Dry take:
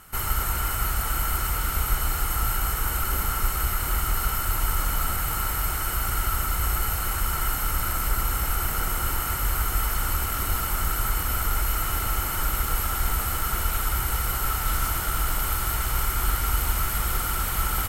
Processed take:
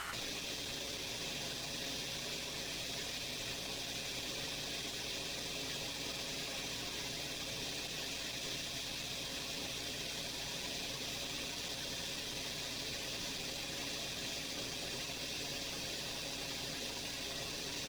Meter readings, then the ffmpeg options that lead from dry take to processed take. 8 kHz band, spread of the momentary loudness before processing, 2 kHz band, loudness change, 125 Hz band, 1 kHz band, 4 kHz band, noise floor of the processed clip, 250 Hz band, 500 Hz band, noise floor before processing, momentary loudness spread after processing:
−12.5 dB, 1 LU, −12.0 dB, −14.0 dB, −22.0 dB, −22.0 dB, −2.5 dB, −43 dBFS, −8.5 dB, −7.0 dB, −28 dBFS, 1 LU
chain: -filter_complex "[0:a]highpass=frequency=1000:poles=1,afftfilt=real='re*lt(hypot(re,im),0.0126)':imag='im*lt(hypot(re,im),0.0126)':win_size=1024:overlap=0.75,lowpass=4700,aecho=1:1:7.3:0.49,areverse,acompressor=mode=upward:threshold=-54dB:ratio=2.5,areverse,alimiter=level_in=23dB:limit=-24dB:level=0:latency=1:release=65,volume=-23dB,acontrast=46,aeval=exprs='0.00891*(cos(1*acos(clip(val(0)/0.00891,-1,1)))-cos(1*PI/2))+0.00141*(cos(7*acos(clip(val(0)/0.00891,-1,1)))-cos(7*PI/2))':channel_layout=same,flanger=delay=5.3:depth=8.4:regen=-81:speed=0.25:shape=triangular,aeval=exprs='val(0)+0.000316*(sin(2*PI*60*n/s)+sin(2*PI*2*60*n/s)/2+sin(2*PI*3*60*n/s)/3+sin(2*PI*4*60*n/s)/4+sin(2*PI*5*60*n/s)/5)':channel_layout=same,asplit=2[link_01][link_02];[link_02]aecho=0:1:93:0.188[link_03];[link_01][link_03]amix=inputs=2:normalize=0,volume=13dB" -ar 44100 -c:a nellymoser

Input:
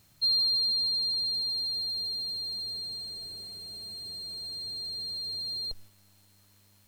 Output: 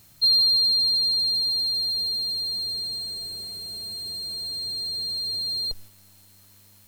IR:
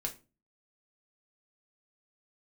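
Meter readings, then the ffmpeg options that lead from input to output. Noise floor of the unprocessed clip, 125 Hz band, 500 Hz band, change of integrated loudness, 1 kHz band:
−62 dBFS, +5.5 dB, +5.5 dB, +7.0 dB, can't be measured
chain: -af "highshelf=frequency=7800:gain=6.5,volume=5.5dB"

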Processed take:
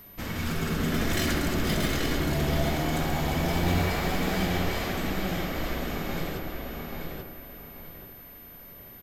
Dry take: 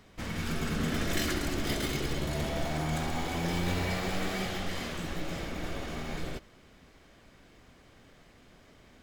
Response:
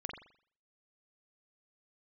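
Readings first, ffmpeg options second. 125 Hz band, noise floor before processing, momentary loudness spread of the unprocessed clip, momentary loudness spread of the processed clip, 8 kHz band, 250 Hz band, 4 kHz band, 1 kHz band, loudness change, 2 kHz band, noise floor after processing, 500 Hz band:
+5.5 dB, −58 dBFS, 7 LU, 17 LU, +3.0 dB, +5.5 dB, +3.5 dB, +5.5 dB, +4.5 dB, +4.5 dB, −47 dBFS, +5.0 dB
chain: -filter_complex "[0:a]aeval=exprs='val(0)+0.00316*sin(2*PI*13000*n/s)':channel_layout=same,asplit=2[link_01][link_02];[link_02]adelay=835,lowpass=frequency=4300:poles=1,volume=-3.5dB,asplit=2[link_03][link_04];[link_04]adelay=835,lowpass=frequency=4300:poles=1,volume=0.3,asplit=2[link_05][link_06];[link_06]adelay=835,lowpass=frequency=4300:poles=1,volume=0.3,asplit=2[link_07][link_08];[link_08]adelay=835,lowpass=frequency=4300:poles=1,volume=0.3[link_09];[link_01][link_03][link_05][link_07][link_09]amix=inputs=5:normalize=0,asplit=2[link_10][link_11];[1:a]atrim=start_sample=2205,asetrate=27342,aresample=44100[link_12];[link_11][link_12]afir=irnorm=-1:irlink=0,volume=-1dB[link_13];[link_10][link_13]amix=inputs=2:normalize=0,volume=-2.5dB"

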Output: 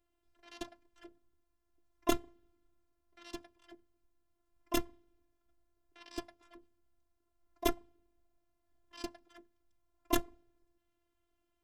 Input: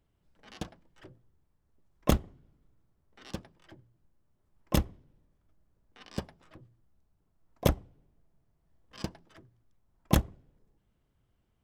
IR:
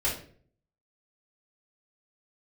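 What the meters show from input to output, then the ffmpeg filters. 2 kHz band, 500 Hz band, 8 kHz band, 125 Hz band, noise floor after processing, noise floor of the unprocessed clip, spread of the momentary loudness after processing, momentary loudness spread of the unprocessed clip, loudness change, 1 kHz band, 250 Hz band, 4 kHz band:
−2.0 dB, −3.5 dB, −2.0 dB, −21.0 dB, −81 dBFS, −74 dBFS, 22 LU, 15 LU, −5.5 dB, −1.5 dB, −5.0 dB, −2.5 dB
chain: -af "lowshelf=frequency=110:gain=-7.5,afftfilt=real='hypot(re,im)*cos(PI*b)':imag='0':win_size=512:overlap=0.75,volume=1dB"

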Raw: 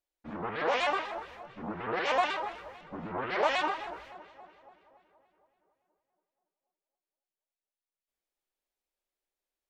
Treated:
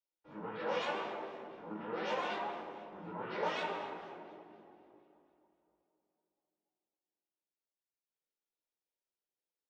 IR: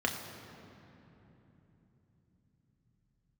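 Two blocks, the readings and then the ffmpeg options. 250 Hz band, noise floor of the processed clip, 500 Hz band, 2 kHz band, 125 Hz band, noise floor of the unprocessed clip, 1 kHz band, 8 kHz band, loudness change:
−4.5 dB, below −85 dBFS, −5.5 dB, −9.0 dB, −5.5 dB, below −85 dBFS, −8.0 dB, −9.0 dB, −8.0 dB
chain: -filter_complex "[0:a]flanger=delay=17.5:depth=2.5:speed=1.9[link_01];[1:a]atrim=start_sample=2205,asetrate=83790,aresample=44100[link_02];[link_01][link_02]afir=irnorm=-1:irlink=0,volume=-7.5dB"

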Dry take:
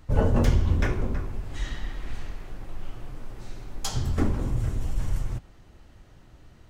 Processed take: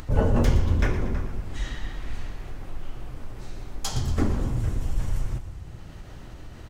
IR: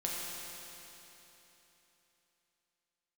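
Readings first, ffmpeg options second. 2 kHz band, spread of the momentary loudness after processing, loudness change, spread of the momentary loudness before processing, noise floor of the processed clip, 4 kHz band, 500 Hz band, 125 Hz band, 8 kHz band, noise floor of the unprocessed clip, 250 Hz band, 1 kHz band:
+1.0 dB, 20 LU, +0.5 dB, 20 LU, −42 dBFS, +1.0 dB, +1.0 dB, +0.5 dB, +1.0 dB, −52 dBFS, +1.0 dB, +1.0 dB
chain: -filter_complex "[0:a]asplit=7[link_01][link_02][link_03][link_04][link_05][link_06][link_07];[link_02]adelay=117,afreqshift=-32,volume=-12dB[link_08];[link_03]adelay=234,afreqshift=-64,volume=-16.9dB[link_09];[link_04]adelay=351,afreqshift=-96,volume=-21.8dB[link_10];[link_05]adelay=468,afreqshift=-128,volume=-26.6dB[link_11];[link_06]adelay=585,afreqshift=-160,volume=-31.5dB[link_12];[link_07]adelay=702,afreqshift=-192,volume=-36.4dB[link_13];[link_01][link_08][link_09][link_10][link_11][link_12][link_13]amix=inputs=7:normalize=0,acompressor=mode=upward:threshold=-30dB:ratio=2.5,asplit=2[link_14][link_15];[1:a]atrim=start_sample=2205[link_16];[link_15][link_16]afir=irnorm=-1:irlink=0,volume=-22.5dB[link_17];[link_14][link_17]amix=inputs=2:normalize=0"

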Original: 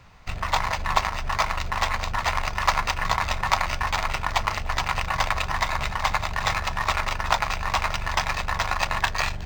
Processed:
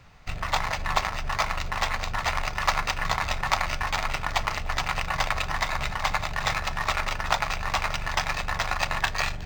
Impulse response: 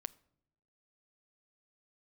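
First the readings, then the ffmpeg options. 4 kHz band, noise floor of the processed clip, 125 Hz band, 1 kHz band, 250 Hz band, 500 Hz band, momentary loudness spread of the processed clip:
−1.5 dB, −34 dBFS, −2.5 dB, −3.0 dB, −1.0 dB, −1.5 dB, 2 LU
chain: -filter_complex "[0:a]equalizer=frequency=1000:width=6.6:gain=-5[link_01];[1:a]atrim=start_sample=2205[link_02];[link_01][link_02]afir=irnorm=-1:irlink=0,volume=2dB"

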